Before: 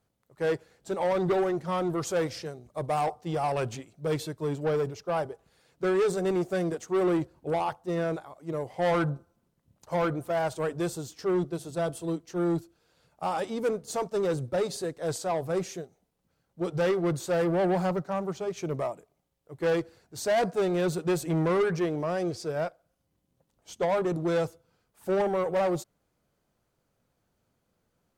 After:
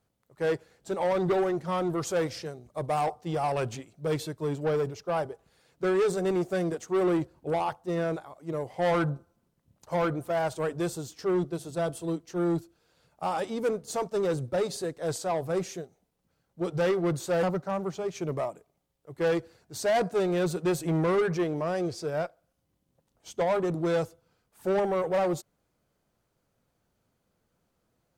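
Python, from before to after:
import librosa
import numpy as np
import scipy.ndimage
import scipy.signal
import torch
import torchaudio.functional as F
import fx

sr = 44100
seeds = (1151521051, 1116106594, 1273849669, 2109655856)

y = fx.edit(x, sr, fx.cut(start_s=17.43, length_s=0.42), tone=tone)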